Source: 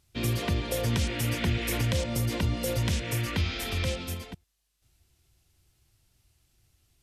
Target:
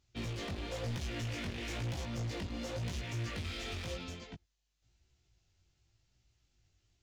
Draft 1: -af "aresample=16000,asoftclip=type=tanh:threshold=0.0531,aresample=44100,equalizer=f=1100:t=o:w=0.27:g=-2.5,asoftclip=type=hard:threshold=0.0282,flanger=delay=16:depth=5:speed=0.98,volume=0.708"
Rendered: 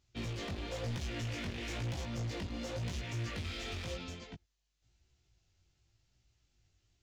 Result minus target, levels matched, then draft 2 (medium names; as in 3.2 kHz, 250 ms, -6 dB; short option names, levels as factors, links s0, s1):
saturation: distortion +12 dB
-af "aresample=16000,asoftclip=type=tanh:threshold=0.141,aresample=44100,equalizer=f=1100:t=o:w=0.27:g=-2.5,asoftclip=type=hard:threshold=0.0282,flanger=delay=16:depth=5:speed=0.98,volume=0.708"